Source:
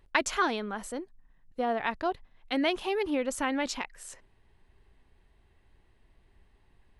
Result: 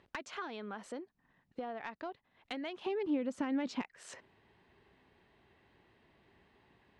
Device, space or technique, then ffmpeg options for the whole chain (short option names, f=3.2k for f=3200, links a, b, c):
AM radio: -filter_complex "[0:a]highpass=150,lowpass=4.5k,acompressor=threshold=-44dB:ratio=6,asoftclip=type=tanh:threshold=-31.5dB,asettb=1/sr,asplit=3[a][b][c];[a]atrim=end=2.864[d];[b]atrim=start=2.86:end=3.82,asetpts=PTS-STARTPTS,afade=t=in:d=0.004:c=qsin,afade=t=out:st=0.956:d=0.004:c=qsin,equalizer=f=170:w=0.57:g=14.5[e];[c]atrim=start=3.816[f];[d][e]acrossfade=d=0.004:c1=hsin:c2=qsin[g];[g][f]acrossfade=d=0.004:c1=qsin:c2=hsin,volume=4dB"